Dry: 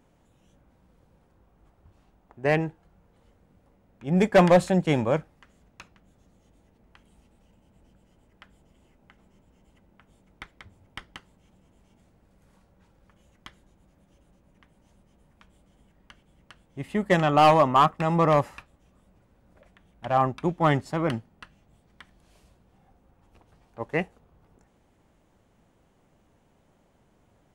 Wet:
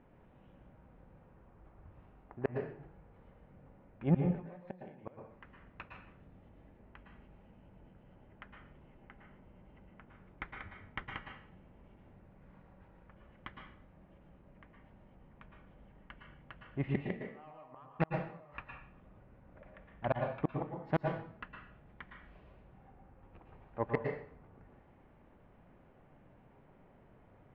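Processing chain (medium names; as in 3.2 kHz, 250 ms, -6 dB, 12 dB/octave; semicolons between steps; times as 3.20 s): low-pass 2.5 kHz 24 dB/octave; inverted gate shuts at -16 dBFS, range -39 dB; saturation -16.5 dBFS, distortion -22 dB; plate-style reverb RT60 0.56 s, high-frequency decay 0.9×, pre-delay 100 ms, DRR 2 dB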